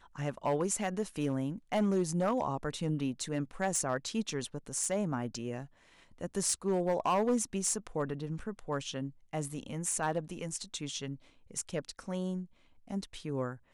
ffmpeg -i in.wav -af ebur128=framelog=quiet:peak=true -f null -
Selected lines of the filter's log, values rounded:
Integrated loudness:
  I:         -34.4 LUFS
  Threshold: -44.6 LUFS
Loudness range:
  LRA:         4.5 LU
  Threshold: -54.5 LUFS
  LRA low:   -37.5 LUFS
  LRA high:  -32.9 LUFS
True peak:
  Peak:      -20.2 dBFS